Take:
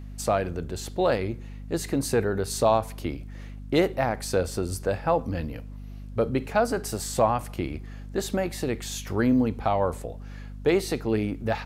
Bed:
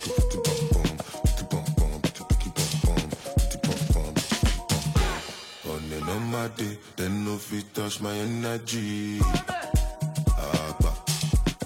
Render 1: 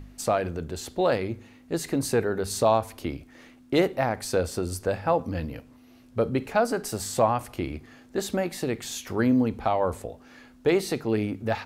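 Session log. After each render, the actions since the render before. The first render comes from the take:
hum removal 50 Hz, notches 4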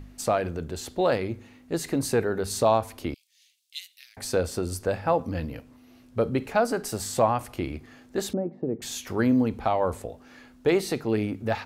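0:03.14–0:04.17: inverse Chebyshev high-pass filter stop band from 990 Hz, stop band 60 dB
0:08.33–0:08.82: flat-topped band-pass 260 Hz, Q 0.6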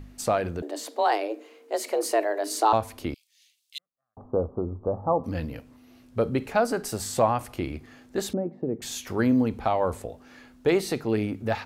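0:00.62–0:02.73: frequency shifter +210 Hz
0:03.78–0:05.24: Chebyshev low-pass filter 1,200 Hz, order 6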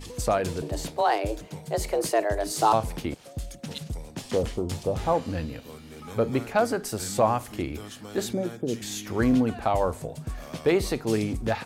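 mix in bed −11.5 dB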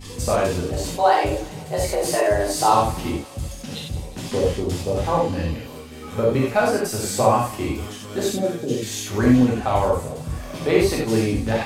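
feedback echo with a high-pass in the loop 180 ms, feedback 74%, high-pass 1,000 Hz, level −17 dB
reverb whose tail is shaped and stops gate 120 ms flat, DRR −4.5 dB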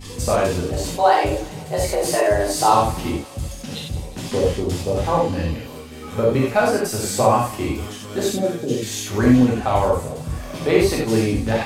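level +1.5 dB
brickwall limiter −3 dBFS, peak gain reduction 1 dB

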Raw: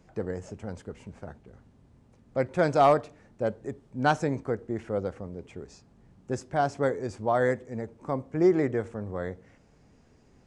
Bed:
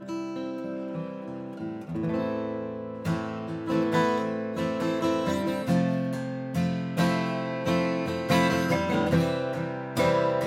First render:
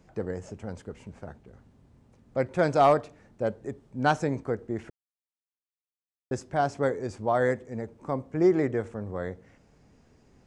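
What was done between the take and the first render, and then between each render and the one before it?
0:04.90–0:06.31: silence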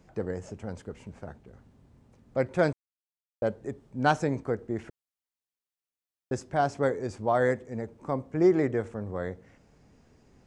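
0:02.73–0:03.42: silence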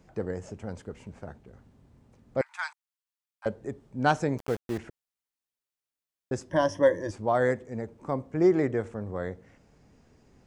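0:02.41–0:03.46: Butterworth high-pass 860 Hz 72 dB per octave
0:04.38–0:04.78: centre clipping without the shift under −35.5 dBFS
0:06.50–0:07.11: EQ curve with evenly spaced ripples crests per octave 1.2, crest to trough 18 dB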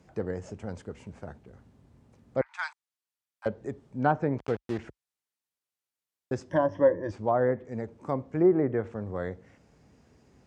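treble cut that deepens with the level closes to 1,200 Hz, closed at −20.5 dBFS
high-pass filter 47 Hz 24 dB per octave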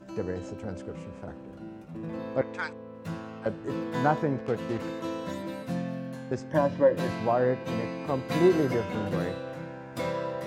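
mix in bed −8 dB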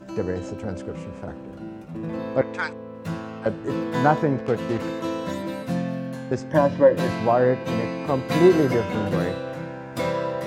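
level +6 dB

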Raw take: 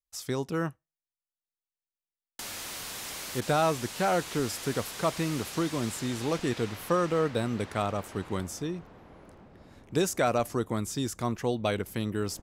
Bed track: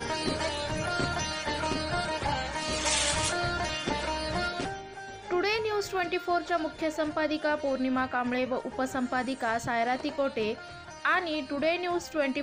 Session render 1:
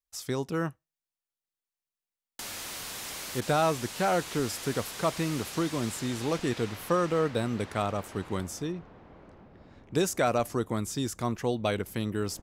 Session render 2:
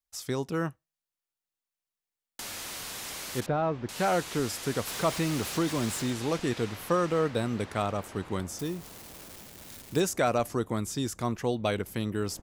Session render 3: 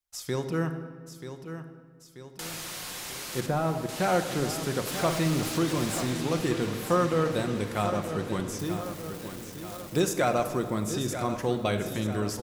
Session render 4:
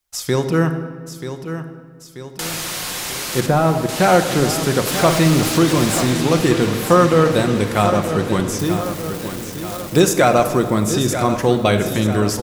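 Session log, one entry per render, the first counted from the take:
0:08.72–0:09.95: high-frequency loss of the air 110 metres
0:03.46–0:03.89: head-to-tape spacing loss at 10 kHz 44 dB; 0:04.87–0:06.13: converter with a step at zero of −37 dBFS; 0:08.59–0:10.00: spike at every zero crossing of −32.5 dBFS
repeating echo 935 ms, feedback 55%, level −10.5 dB; rectangular room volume 1,900 cubic metres, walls mixed, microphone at 0.9 metres
level +12 dB; brickwall limiter −2 dBFS, peak gain reduction 1.5 dB

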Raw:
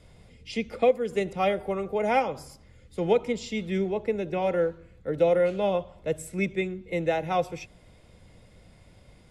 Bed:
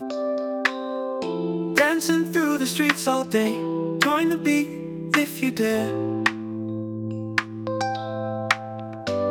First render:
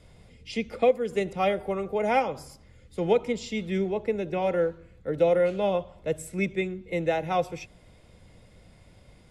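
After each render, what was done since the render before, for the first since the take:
no processing that can be heard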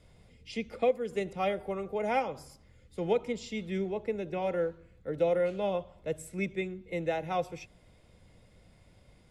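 level −5.5 dB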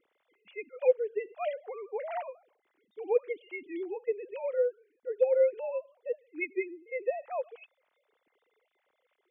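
three sine waves on the formant tracks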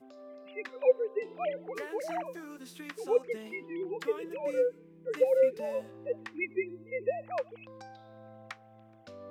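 mix in bed −23.5 dB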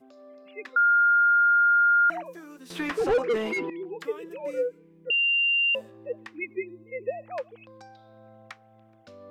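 0:00.76–0:02.10: beep over 1,410 Hz −16.5 dBFS
0:02.70–0:03.70: mid-hump overdrive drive 31 dB, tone 1,100 Hz, clips at −14.5 dBFS
0:05.10–0:05.75: beep over 2,780 Hz −20 dBFS

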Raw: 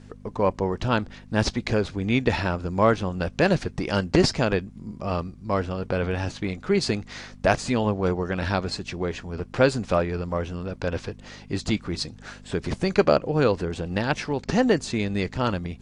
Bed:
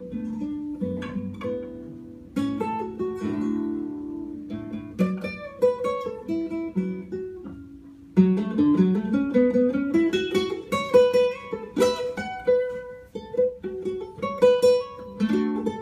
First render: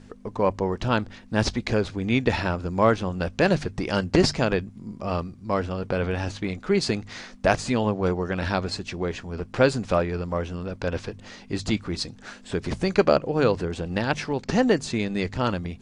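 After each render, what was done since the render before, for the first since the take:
hum removal 50 Hz, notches 3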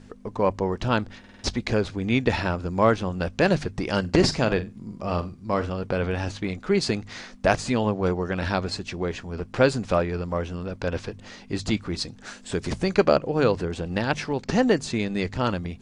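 0:01.19: stutter in place 0.05 s, 5 plays
0:04.00–0:05.70: flutter between parallel walls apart 7.7 metres, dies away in 0.22 s
0:12.18–0:12.73: dynamic equaliser 8,000 Hz, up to +7 dB, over −59 dBFS, Q 0.79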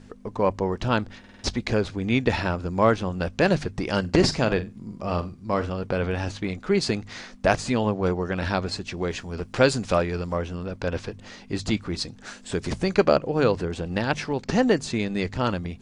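0:08.97–0:10.36: high-shelf EQ 3,200 Hz +7 dB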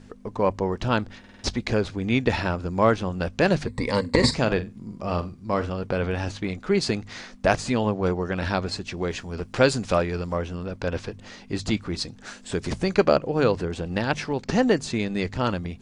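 0:03.67–0:04.34: EQ curve with evenly spaced ripples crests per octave 0.98, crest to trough 14 dB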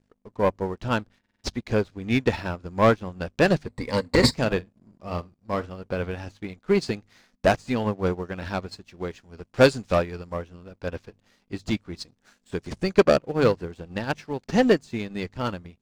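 leveller curve on the samples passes 2
expander for the loud parts 2.5 to 1, over −26 dBFS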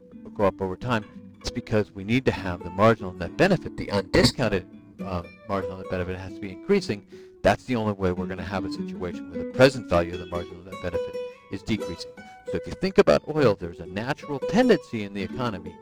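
mix in bed −13 dB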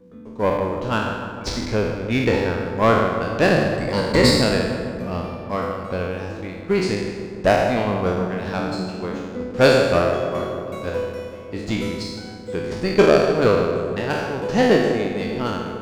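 peak hold with a decay on every bin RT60 1.13 s
feedback echo with a low-pass in the loop 152 ms, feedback 77%, low-pass 2,100 Hz, level −9.5 dB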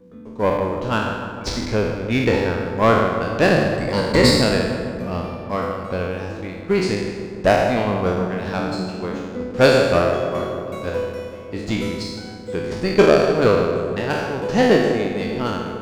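level +1 dB
brickwall limiter −3 dBFS, peak gain reduction 1.5 dB

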